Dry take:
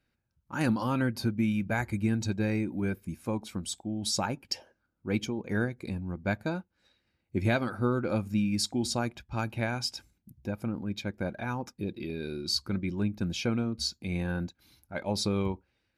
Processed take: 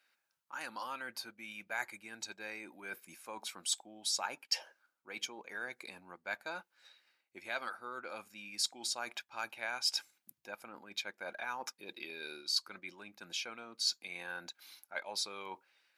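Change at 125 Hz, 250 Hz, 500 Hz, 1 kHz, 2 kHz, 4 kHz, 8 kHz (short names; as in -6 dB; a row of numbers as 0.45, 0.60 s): -35.0, -26.0, -14.0, -6.0, -3.5, -1.5, -1.5 dB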